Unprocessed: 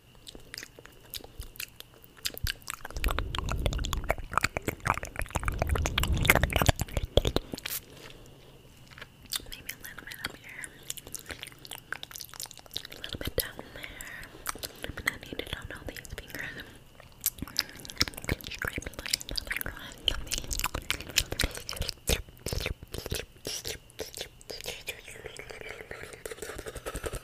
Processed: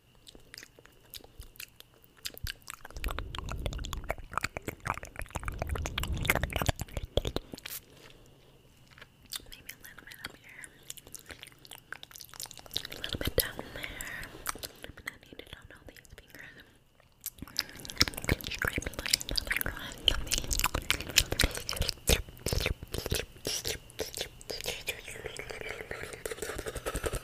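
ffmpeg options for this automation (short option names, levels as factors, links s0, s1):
-af "volume=5.31,afade=t=in:st=12.19:d=0.58:silence=0.398107,afade=t=out:st=14.23:d=0.73:silence=0.237137,afade=t=in:st=17.26:d=0.81:silence=0.237137"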